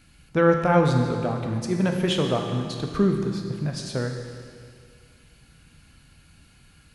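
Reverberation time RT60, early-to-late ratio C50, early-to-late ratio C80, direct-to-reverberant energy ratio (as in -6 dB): 2.2 s, 4.0 dB, 5.5 dB, 2.5 dB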